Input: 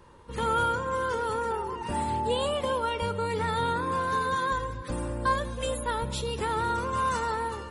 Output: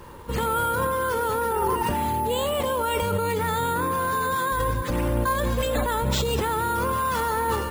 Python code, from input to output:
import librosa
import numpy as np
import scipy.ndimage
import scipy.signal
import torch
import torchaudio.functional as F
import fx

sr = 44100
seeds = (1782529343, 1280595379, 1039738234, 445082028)

p1 = fx.over_compress(x, sr, threshold_db=-33.0, ratio=-0.5)
p2 = x + (p1 * librosa.db_to_amplitude(3.0))
y = np.repeat(p2[::4], 4)[:len(p2)]